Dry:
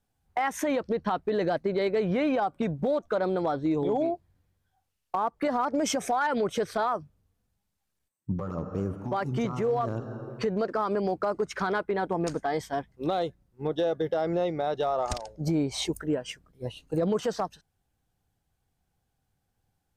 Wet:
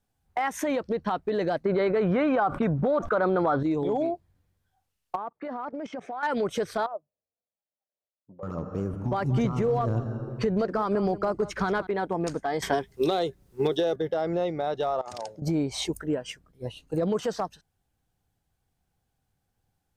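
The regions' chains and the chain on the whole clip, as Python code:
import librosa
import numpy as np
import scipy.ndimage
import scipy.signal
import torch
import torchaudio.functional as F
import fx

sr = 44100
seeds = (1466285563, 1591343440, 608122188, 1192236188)

y = fx.chain(x, sr, fx.lowpass(hz=2100.0, slope=6),
    fx.peak_eq(hz=1300.0, db=9.0, octaves=0.84),
    fx.env_flatten(amount_pct=70), at=(1.65, 3.63))
y = fx.chain(y, sr, fx.bandpass_edges(low_hz=160.0, high_hz=2700.0),
    fx.level_steps(step_db=17), at=(5.16, 6.23))
y = fx.chain(y, sr, fx.bandpass_q(hz=600.0, q=4.8),
    fx.transient(attack_db=1, sustain_db=-6), at=(6.86, 8.43))
y = fx.chain(y, sr, fx.low_shelf(hz=150.0, db=12.0),
    fx.echo_single(ms=181, db=-16.0), at=(8.93, 11.87))
y = fx.chain(y, sr, fx.high_shelf(hz=2700.0, db=8.0),
    fx.small_body(hz=(400.0,), ring_ms=85, db=13),
    fx.band_squash(depth_pct=100), at=(12.62, 13.96))
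y = fx.chain(y, sr, fx.highpass(hz=110.0, slope=24),
    fx.over_compress(threshold_db=-39.0, ratio=-1.0), at=(15.01, 15.42))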